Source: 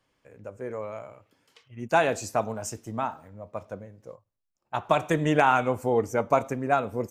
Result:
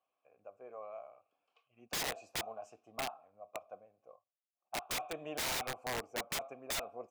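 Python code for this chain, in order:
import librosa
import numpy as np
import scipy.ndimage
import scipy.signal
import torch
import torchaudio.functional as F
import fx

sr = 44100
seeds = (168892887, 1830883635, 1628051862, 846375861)

y = fx.vowel_filter(x, sr, vowel='a')
y = (np.mod(10.0 ** (29.5 / 20.0) * y + 1.0, 2.0) - 1.0) / 10.0 ** (29.5 / 20.0)
y = y * librosa.db_to_amplitude(-1.5)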